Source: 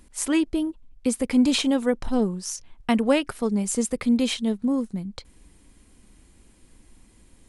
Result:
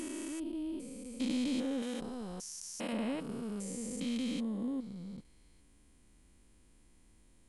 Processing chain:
spectrum averaged block by block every 400 ms
0:01.82–0:02.93: spectral tilt +2 dB per octave
level −8.5 dB

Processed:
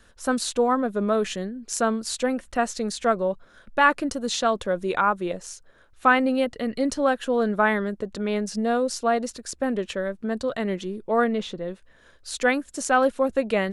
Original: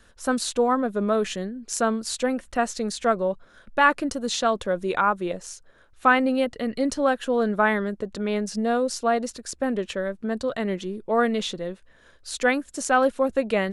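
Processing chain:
0:11.24–0:11.68: high-shelf EQ 3,200 Hz −11.5 dB

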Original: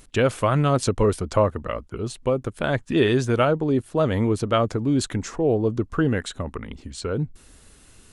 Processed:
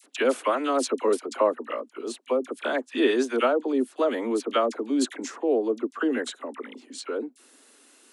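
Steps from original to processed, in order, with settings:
Butterworth high-pass 240 Hz 72 dB per octave
all-pass dispersion lows, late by 43 ms, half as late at 1,400 Hz
level −2 dB

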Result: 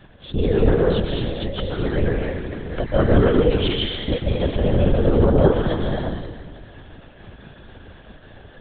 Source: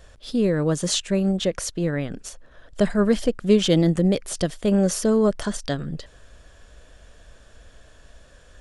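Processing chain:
0:00.77–0:01.53: downward compressor, threshold −25 dBFS, peak gain reduction 8 dB
0:03.50–0:04.09: high-pass filter 1,100 Hz 24 dB per octave
dense smooth reverb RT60 1.7 s, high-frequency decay 0.8×, pre-delay 120 ms, DRR −3.5 dB
linear-prediction vocoder at 8 kHz whisper
0:02.28–0:02.90: multiband upward and downward compressor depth 100%

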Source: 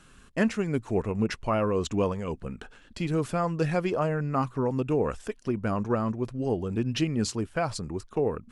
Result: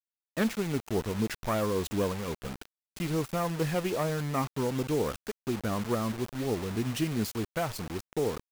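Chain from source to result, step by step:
phase distortion by the signal itself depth 0.16 ms
noise gate −45 dBFS, range −6 dB
bit-depth reduction 6 bits, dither none
level −3 dB

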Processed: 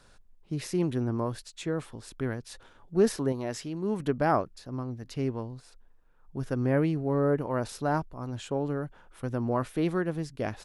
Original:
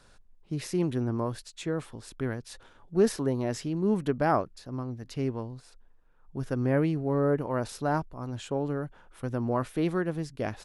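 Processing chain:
0:03.32–0:04.00: low-shelf EQ 390 Hz −6.5 dB

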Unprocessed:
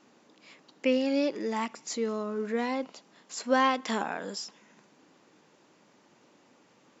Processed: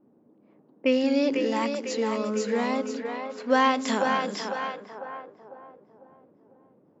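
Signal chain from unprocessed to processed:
echo with a time of its own for lows and highs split 370 Hz, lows 183 ms, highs 499 ms, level −5 dB
low-pass that shuts in the quiet parts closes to 400 Hz, open at −26.5 dBFS
level +3 dB

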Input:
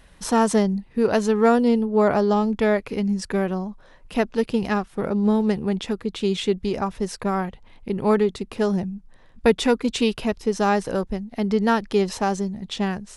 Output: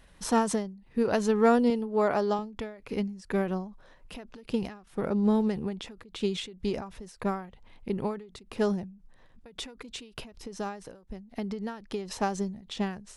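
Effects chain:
0:01.70–0:02.39: low-shelf EQ 230 Hz −10.5 dB
0:10.40–0:12.11: downward compressor 6 to 1, threshold −26 dBFS, peak gain reduction 11 dB
every ending faded ahead of time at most 110 dB per second
level −4.5 dB

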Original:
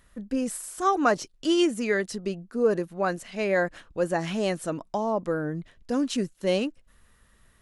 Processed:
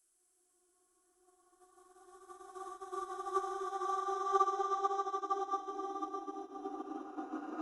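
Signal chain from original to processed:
extreme stretch with random phases 26×, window 0.25 s, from 0:00.71
expander for the loud parts 2.5 to 1, over −35 dBFS
level −8.5 dB

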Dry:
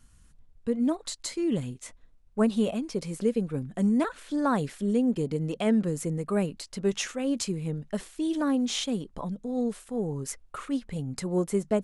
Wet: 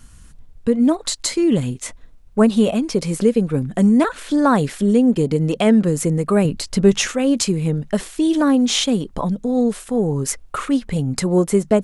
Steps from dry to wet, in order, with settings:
in parallel at −1.5 dB: downward compressor, threshold −31 dBFS, peak gain reduction 12.5 dB
0:06.45–0:07.10: on the sum: low-shelf EQ 240 Hz +8 dB
level +8 dB

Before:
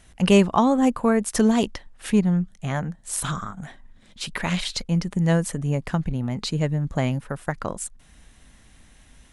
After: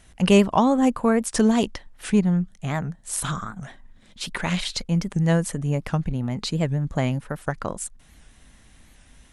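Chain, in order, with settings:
wow of a warped record 78 rpm, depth 160 cents

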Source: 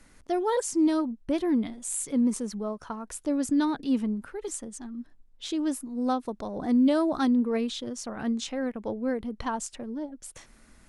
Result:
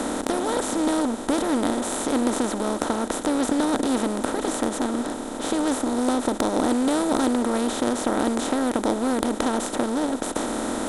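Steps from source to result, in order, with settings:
compressor on every frequency bin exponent 0.2
harmonic generator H 3 −17 dB, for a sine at −2 dBFS

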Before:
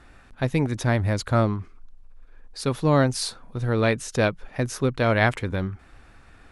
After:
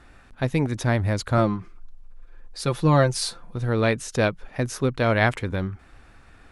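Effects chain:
0:01.37–0:03.56: comb filter 5.8 ms, depth 58%

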